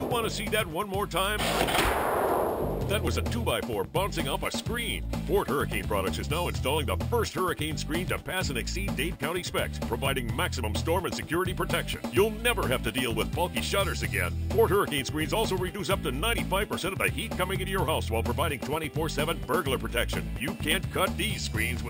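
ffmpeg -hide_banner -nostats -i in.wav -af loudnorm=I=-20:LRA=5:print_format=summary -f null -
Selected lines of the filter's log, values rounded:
Input Integrated:    -28.5 LUFS
Input True Peak:     -10.9 dBTP
Input LRA:             2.1 LU
Input Threshold:     -38.5 LUFS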